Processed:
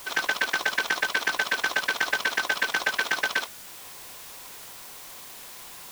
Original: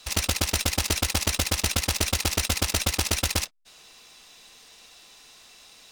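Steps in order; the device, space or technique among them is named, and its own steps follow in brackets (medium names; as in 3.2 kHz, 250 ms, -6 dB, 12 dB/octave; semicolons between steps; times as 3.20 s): split-band scrambled radio (four frequency bands reordered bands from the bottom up 3142; band-pass 330–3300 Hz; white noise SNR 14 dB); trim +1.5 dB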